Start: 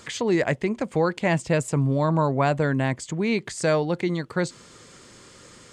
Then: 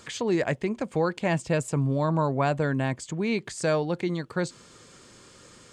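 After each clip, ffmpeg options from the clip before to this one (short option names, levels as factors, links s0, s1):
-af "bandreject=f=2000:w=16,volume=0.708"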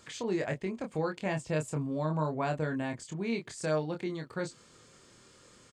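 -filter_complex "[0:a]asplit=2[s0][s1];[s1]adelay=26,volume=0.562[s2];[s0][s2]amix=inputs=2:normalize=0,volume=0.398"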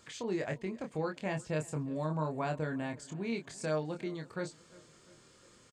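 -af "aecho=1:1:350|700|1050|1400:0.075|0.0397|0.0211|0.0112,volume=0.708"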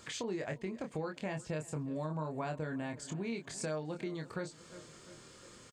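-af "acompressor=threshold=0.00708:ratio=3,volume=1.88"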